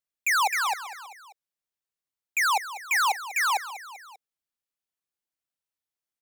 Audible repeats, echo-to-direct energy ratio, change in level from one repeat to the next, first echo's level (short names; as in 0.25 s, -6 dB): 3, -12.5 dB, -4.5 dB, -14.0 dB